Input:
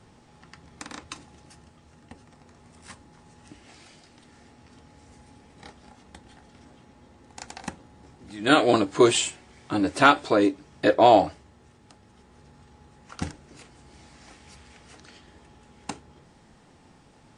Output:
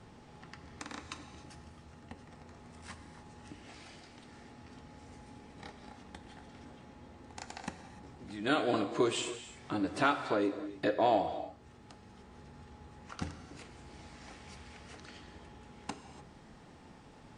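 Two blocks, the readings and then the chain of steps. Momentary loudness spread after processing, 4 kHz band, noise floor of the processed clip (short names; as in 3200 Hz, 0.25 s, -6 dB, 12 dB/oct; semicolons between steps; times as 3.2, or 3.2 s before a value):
23 LU, -11.5 dB, -56 dBFS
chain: high shelf 7100 Hz -9 dB; compressor 1.5:1, threshold -47 dBFS, peak gain reduction 12.5 dB; non-linear reverb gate 0.32 s flat, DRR 8.5 dB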